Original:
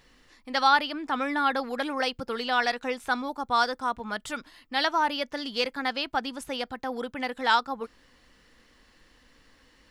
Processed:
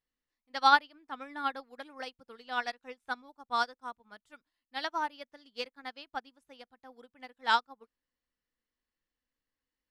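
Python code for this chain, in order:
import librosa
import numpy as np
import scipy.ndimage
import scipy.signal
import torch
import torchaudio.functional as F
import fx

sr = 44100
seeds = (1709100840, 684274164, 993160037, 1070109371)

y = fx.upward_expand(x, sr, threshold_db=-39.0, expansion=2.5)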